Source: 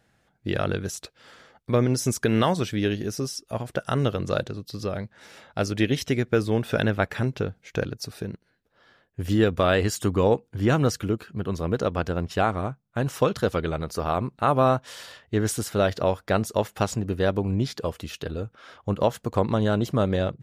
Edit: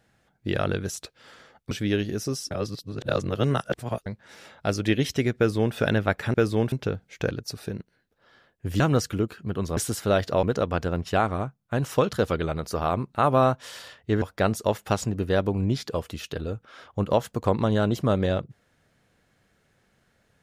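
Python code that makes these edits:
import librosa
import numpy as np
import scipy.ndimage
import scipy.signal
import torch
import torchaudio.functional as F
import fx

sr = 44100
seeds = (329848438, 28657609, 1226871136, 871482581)

y = fx.edit(x, sr, fx.cut(start_s=1.71, length_s=0.92),
    fx.reverse_span(start_s=3.43, length_s=1.55),
    fx.duplicate(start_s=6.29, length_s=0.38, to_s=7.26),
    fx.cut(start_s=9.34, length_s=1.36),
    fx.move(start_s=15.46, length_s=0.66, to_s=11.67), tone=tone)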